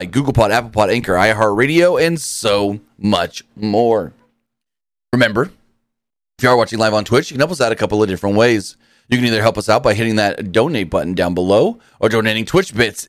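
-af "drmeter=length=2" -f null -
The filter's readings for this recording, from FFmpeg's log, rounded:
Channel 1: DR: 9.3
Overall DR: 9.3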